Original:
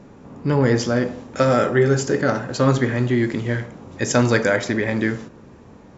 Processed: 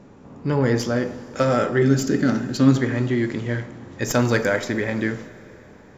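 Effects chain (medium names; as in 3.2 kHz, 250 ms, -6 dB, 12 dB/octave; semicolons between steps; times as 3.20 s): tracing distortion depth 0.031 ms; 1.82–2.76 s: graphic EQ 250/500/1000/4000 Hz +11/-8/-6/+3 dB; Schroeder reverb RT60 3.8 s, combs from 26 ms, DRR 16.5 dB; trim -2.5 dB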